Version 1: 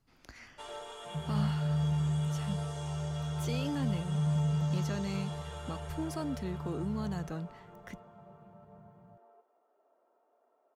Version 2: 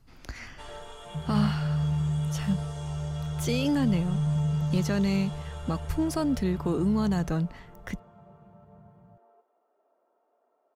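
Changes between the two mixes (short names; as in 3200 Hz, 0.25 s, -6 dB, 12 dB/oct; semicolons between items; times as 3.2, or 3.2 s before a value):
speech +9.0 dB; master: add low shelf 94 Hz +10.5 dB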